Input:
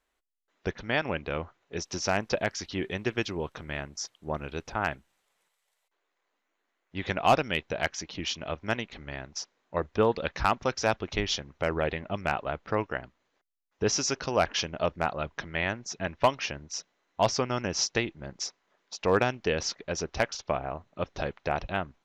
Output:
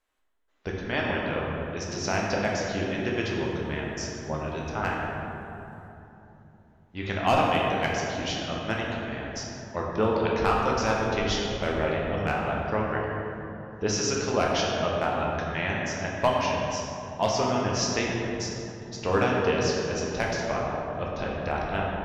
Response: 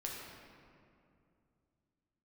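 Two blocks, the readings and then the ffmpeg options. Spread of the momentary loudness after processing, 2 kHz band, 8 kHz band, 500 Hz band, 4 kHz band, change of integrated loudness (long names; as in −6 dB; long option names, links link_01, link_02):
11 LU, +2.0 dB, 0.0 dB, +3.0 dB, +1.0 dB, +2.5 dB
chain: -filter_complex "[1:a]atrim=start_sample=2205,asetrate=30870,aresample=44100[link_01];[0:a][link_01]afir=irnorm=-1:irlink=0"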